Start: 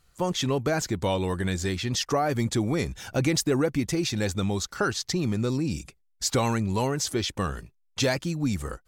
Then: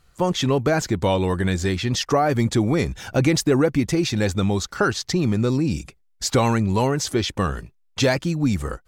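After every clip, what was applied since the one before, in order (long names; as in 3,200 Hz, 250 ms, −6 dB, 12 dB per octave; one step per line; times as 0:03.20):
high-shelf EQ 4,300 Hz −6 dB
level +6 dB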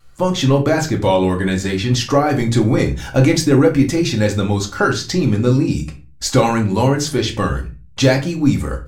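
convolution reverb RT60 0.30 s, pre-delay 4 ms, DRR 1.5 dB
pitch vibrato 0.75 Hz 12 cents
level +2 dB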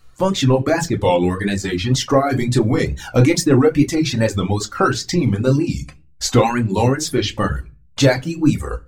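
reverb reduction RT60 0.79 s
tape wow and flutter 110 cents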